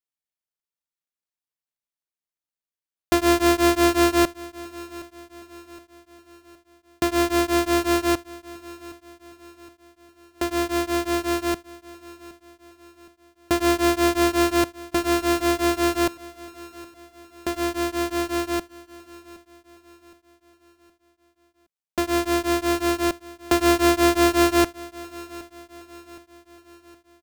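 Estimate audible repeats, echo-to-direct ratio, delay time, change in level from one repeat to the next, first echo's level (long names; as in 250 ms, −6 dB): 3, −18.0 dB, 767 ms, −6.5 dB, −19.0 dB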